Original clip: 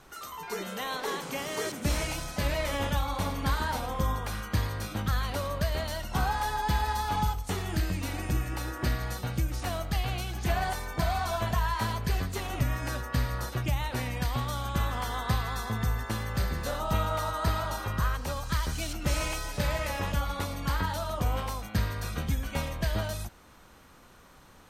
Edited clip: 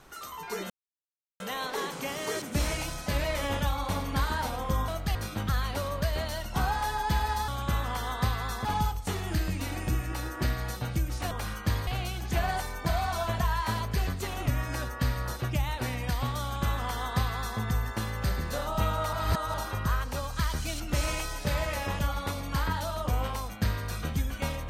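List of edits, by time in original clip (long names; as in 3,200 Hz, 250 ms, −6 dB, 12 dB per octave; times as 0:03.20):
0:00.70: splice in silence 0.70 s
0:04.18–0:04.74: swap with 0:09.73–0:10.00
0:14.55–0:15.72: duplicate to 0:07.07
0:17.26–0:17.67: reverse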